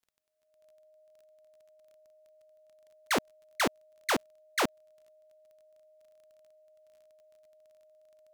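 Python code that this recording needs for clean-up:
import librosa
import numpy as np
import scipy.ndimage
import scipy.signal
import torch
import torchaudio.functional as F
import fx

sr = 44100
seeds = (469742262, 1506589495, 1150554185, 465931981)

y = fx.fix_declick_ar(x, sr, threshold=6.5)
y = fx.notch(y, sr, hz=620.0, q=30.0)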